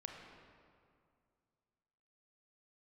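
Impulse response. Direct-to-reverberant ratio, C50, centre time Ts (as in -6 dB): 1.0 dB, 2.5 dB, 75 ms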